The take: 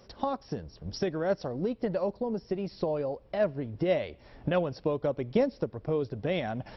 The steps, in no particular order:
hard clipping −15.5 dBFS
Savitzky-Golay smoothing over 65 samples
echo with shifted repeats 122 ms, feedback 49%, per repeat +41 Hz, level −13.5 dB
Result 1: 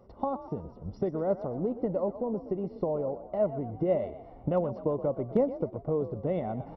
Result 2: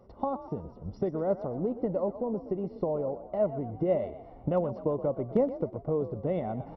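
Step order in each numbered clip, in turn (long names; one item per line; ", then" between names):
Savitzky-Golay smoothing, then echo with shifted repeats, then hard clipping
Savitzky-Golay smoothing, then hard clipping, then echo with shifted repeats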